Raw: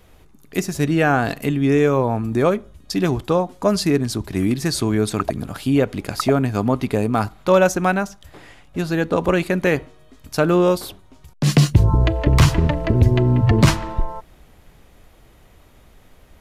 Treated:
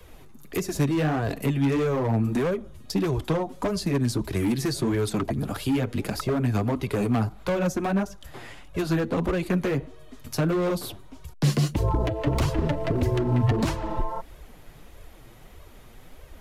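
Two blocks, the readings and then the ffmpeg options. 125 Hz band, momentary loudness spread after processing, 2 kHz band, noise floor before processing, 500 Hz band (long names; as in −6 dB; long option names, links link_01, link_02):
−7.0 dB, 8 LU, −9.5 dB, −50 dBFS, −7.5 dB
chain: -filter_complex "[0:a]acrossover=split=290|700[link_01][link_02][link_03];[link_01]acompressor=threshold=-25dB:ratio=4[link_04];[link_02]acompressor=threshold=-28dB:ratio=4[link_05];[link_03]acompressor=threshold=-35dB:ratio=4[link_06];[link_04][link_05][link_06]amix=inputs=3:normalize=0,flanger=delay=1.8:depth=6.9:regen=-1:speed=1.6:shape=sinusoidal,equalizer=frequency=12000:width_type=o:width=0.42:gain=2.5,acrossover=split=200[link_07][link_08];[link_08]asoftclip=type=hard:threshold=-27.5dB[link_09];[link_07][link_09]amix=inputs=2:normalize=0,volume=4.5dB"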